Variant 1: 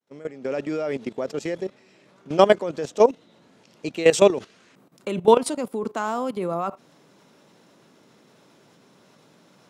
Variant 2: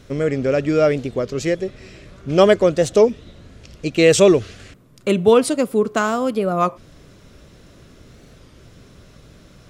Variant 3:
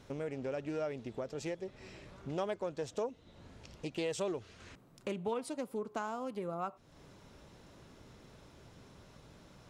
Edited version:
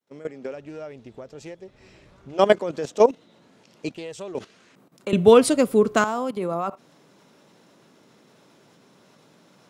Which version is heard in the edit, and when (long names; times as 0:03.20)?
1
0:00.48–0:02.39: punch in from 3, crossfade 0.16 s
0:03.94–0:04.35: punch in from 3
0:05.13–0:06.04: punch in from 2